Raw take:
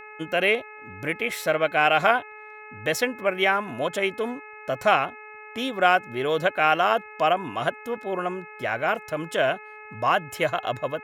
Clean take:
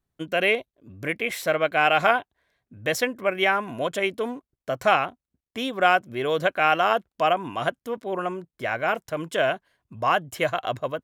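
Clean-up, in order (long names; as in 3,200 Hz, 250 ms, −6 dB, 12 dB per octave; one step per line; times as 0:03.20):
hum removal 426.7 Hz, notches 6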